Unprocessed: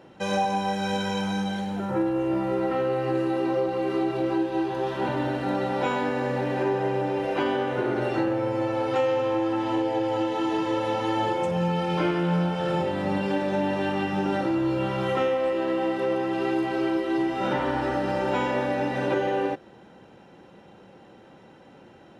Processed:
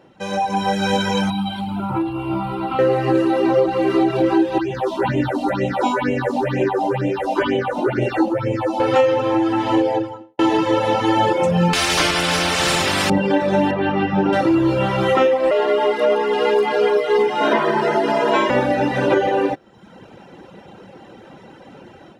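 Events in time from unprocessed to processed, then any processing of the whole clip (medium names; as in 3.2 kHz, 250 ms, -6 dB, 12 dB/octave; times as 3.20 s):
1.30–2.79 s: static phaser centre 1.8 kHz, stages 6
4.58–8.80 s: phase shifter stages 6, 2.1 Hz, lowest notch 110–1300 Hz
9.82–10.39 s: studio fade out
11.73–13.10 s: spectrum-flattening compressor 4:1
13.71–14.33 s: distance through air 220 m
15.51–18.50 s: frequency shift +87 Hz
whole clip: reverb removal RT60 0.84 s; level rider gain up to 11 dB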